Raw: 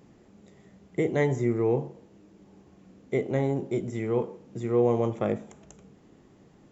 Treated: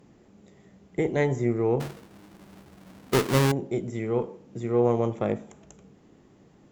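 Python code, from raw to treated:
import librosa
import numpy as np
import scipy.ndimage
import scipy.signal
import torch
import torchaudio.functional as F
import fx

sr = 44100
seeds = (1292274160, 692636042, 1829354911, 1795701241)

y = fx.halfwave_hold(x, sr, at=(1.8, 3.52))
y = fx.cheby_harmonics(y, sr, harmonics=(2,), levels_db=(-16,), full_scale_db=-11.0)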